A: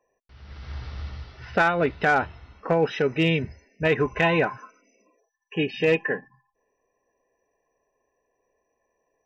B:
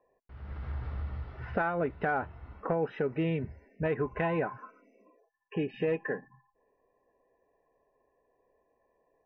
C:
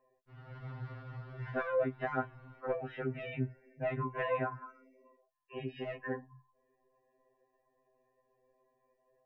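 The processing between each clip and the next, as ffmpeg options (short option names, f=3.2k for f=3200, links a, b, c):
-af "lowpass=1.5k,acompressor=threshold=-37dB:ratio=2,volume=2dB"
-af "afftfilt=real='re*2.45*eq(mod(b,6),0)':imag='im*2.45*eq(mod(b,6),0)':win_size=2048:overlap=0.75"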